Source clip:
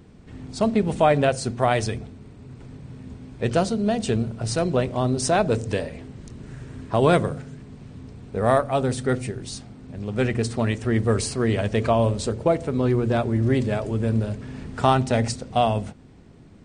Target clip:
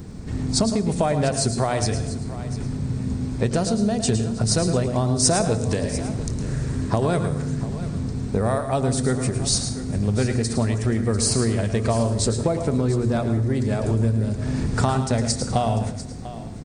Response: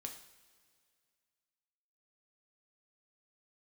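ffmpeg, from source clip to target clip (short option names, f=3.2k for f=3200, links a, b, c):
-filter_complex "[0:a]bass=f=250:g=5,treble=f=4k:g=-11,acompressor=threshold=-27dB:ratio=10,aexciter=amount=6:drive=5.8:freq=4.3k,aecho=1:1:695:0.178,asplit=2[a][b];[1:a]atrim=start_sample=2205,adelay=109[c];[b][c]afir=irnorm=-1:irlink=0,volume=-5dB[d];[a][d]amix=inputs=2:normalize=0,volume=8.5dB"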